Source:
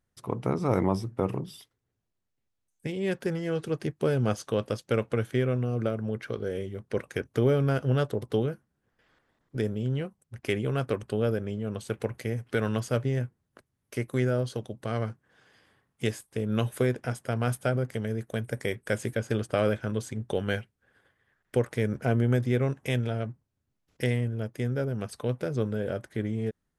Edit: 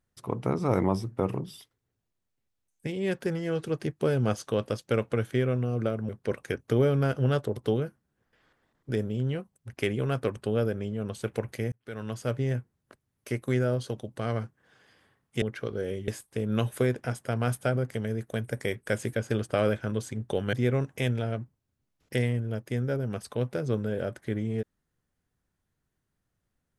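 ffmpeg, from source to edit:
-filter_complex "[0:a]asplit=6[a][b][c][d][e][f];[a]atrim=end=6.092[g];[b]atrim=start=6.748:end=12.38,asetpts=PTS-STARTPTS,afade=t=out:st=5.628:d=0.004:c=hsin[h];[c]atrim=start=12.38:end=16.082,asetpts=PTS-STARTPTS,afade=t=in:d=0.77[i];[d]atrim=start=6.088:end=6.752[j];[e]atrim=start=16.078:end=20.532[k];[f]atrim=start=22.408[l];[h][i]concat=n=2:v=0:a=1[m];[g][m]acrossfade=d=0.004:c1=hsin:c2=hsin[n];[n][j]acrossfade=d=0.004:c1=hsin:c2=hsin[o];[o][k]acrossfade=d=0.004:c1=hsin:c2=hsin[p];[p][l]acrossfade=d=0.004:c1=hsin:c2=hsin"

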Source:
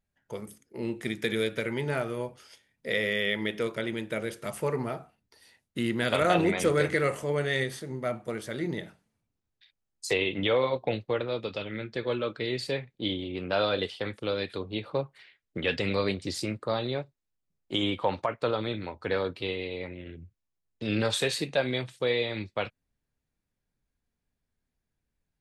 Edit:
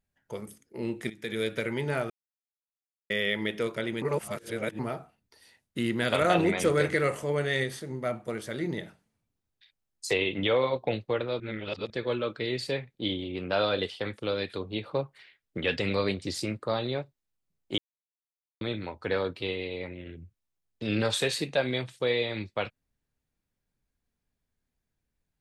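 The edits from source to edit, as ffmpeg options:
-filter_complex "[0:a]asplit=10[a][b][c][d][e][f][g][h][i][j];[a]atrim=end=1.1,asetpts=PTS-STARTPTS,afade=t=out:st=1.096:d=0.004:c=hsin:silence=0.133352[k];[b]atrim=start=1.1:end=2.1,asetpts=PTS-STARTPTS,afade=t=in:d=0.41:silence=0.133352,afade=t=out:st=0.996:d=0.004:c=hsin[l];[c]atrim=start=2.1:end=3.1,asetpts=PTS-STARTPTS,volume=0[m];[d]atrim=start=3.1:end=4.022,asetpts=PTS-STARTPTS,afade=t=in:d=0.004:c=hsin[n];[e]atrim=start=4.018:end=4.792,asetpts=PTS-STARTPTS,areverse[o];[f]atrim=start=4.788:end=11.402[p];[g]atrim=start=11.398:end=11.902,asetpts=PTS-STARTPTS,areverse[q];[h]atrim=start=11.898:end=17.78,asetpts=PTS-STARTPTS,afade=t=out:st=5.878:d=0.004:c=hsin[r];[i]atrim=start=17.78:end=18.61,asetpts=PTS-STARTPTS,volume=0[s];[j]atrim=start=18.61,asetpts=PTS-STARTPTS,afade=t=in:d=0.004:c=hsin[t];[k][l][m][n]concat=n=4:v=0:a=1[u];[u][o]acrossfade=d=0.004:c1=hsin:c2=hsin[v];[v][p]acrossfade=d=0.004:c1=hsin:c2=hsin[w];[w][q]acrossfade=d=0.004:c1=hsin:c2=hsin[x];[r][s][t]concat=n=3:v=0:a=1[y];[x][y]acrossfade=d=0.004:c1=hsin:c2=hsin"

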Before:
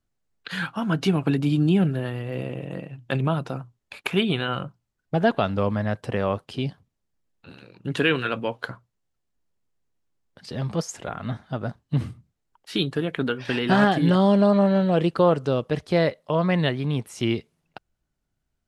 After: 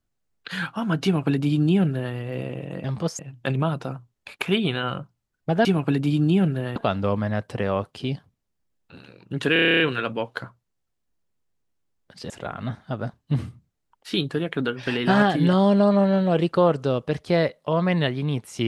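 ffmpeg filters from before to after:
-filter_complex "[0:a]asplit=15[a][b][c][d][e][f][g][h][i][j][k][l][m][n][o];[a]atrim=end=2.842[p];[b]atrim=start=10.568:end=10.922[q];[c]atrim=start=2.838:end=5.302[r];[d]atrim=start=1.038:end=2.152[s];[e]atrim=start=5.298:end=8.102[t];[f]atrim=start=8.068:end=8.102[u];[g]atrim=start=8.068:end=8.102[v];[h]atrim=start=8.068:end=8.102[w];[i]atrim=start=8.068:end=8.102[x];[j]atrim=start=8.068:end=8.102[y];[k]atrim=start=8.068:end=8.102[z];[l]atrim=start=8.068:end=8.102[aa];[m]atrim=start=8.068:end=8.102[ab];[n]atrim=start=8.068:end=10.572[ac];[o]atrim=start=10.918[ad];[p][q]acrossfade=d=0.004:c1=hsin:c2=hsin[ae];[ae][r]acrossfade=d=0.004:c1=hsin:c2=hsin[af];[af][s]acrossfade=d=0.004:c1=hsin:c2=hsin[ag];[ag][t]acrossfade=d=0.004:c1=hsin:c2=hsin[ah];[ah][u]acrossfade=d=0.004:c1=hsin:c2=hsin[ai];[ai][v]acrossfade=d=0.004:c1=hsin:c2=hsin[aj];[aj][w]acrossfade=d=0.004:c1=hsin:c2=hsin[ak];[ak][x]acrossfade=d=0.004:c1=hsin:c2=hsin[al];[al][y]acrossfade=d=0.004:c1=hsin:c2=hsin[am];[am][z]acrossfade=d=0.004:c1=hsin:c2=hsin[an];[an][aa]acrossfade=d=0.004:c1=hsin:c2=hsin[ao];[ao][ab]acrossfade=d=0.004:c1=hsin:c2=hsin[ap];[ap][ac]acrossfade=d=0.004:c1=hsin:c2=hsin[aq];[aq][ad]acrossfade=d=0.004:c1=hsin:c2=hsin"

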